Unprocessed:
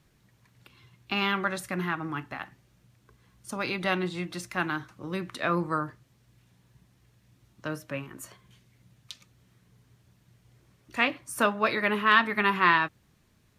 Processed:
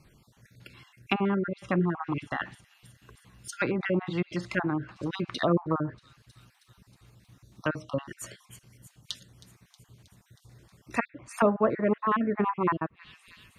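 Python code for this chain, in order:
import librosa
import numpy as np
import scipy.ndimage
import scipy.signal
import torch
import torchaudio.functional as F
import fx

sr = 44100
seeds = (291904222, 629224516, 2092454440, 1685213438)

y = fx.spec_dropout(x, sr, seeds[0], share_pct=38)
y = fx.echo_wet_highpass(y, sr, ms=317, feedback_pct=67, hz=5600.0, wet_db=-13.5)
y = fx.env_lowpass_down(y, sr, base_hz=660.0, full_db=-27.0)
y = y * librosa.db_to_amplitude(6.5)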